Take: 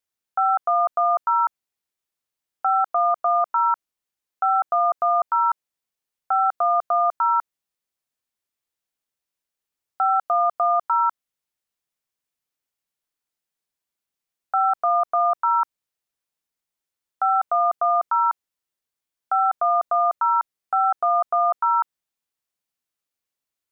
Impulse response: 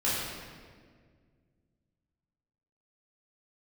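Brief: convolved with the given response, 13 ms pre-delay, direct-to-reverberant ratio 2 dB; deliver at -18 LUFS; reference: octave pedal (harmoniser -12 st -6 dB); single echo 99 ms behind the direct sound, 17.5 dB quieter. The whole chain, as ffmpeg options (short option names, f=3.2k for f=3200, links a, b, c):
-filter_complex "[0:a]aecho=1:1:99:0.133,asplit=2[a][b];[1:a]atrim=start_sample=2205,adelay=13[c];[b][c]afir=irnorm=-1:irlink=0,volume=-12.5dB[d];[a][d]amix=inputs=2:normalize=0,asplit=2[e][f];[f]asetrate=22050,aresample=44100,atempo=2,volume=-6dB[g];[e][g]amix=inputs=2:normalize=0,volume=1dB"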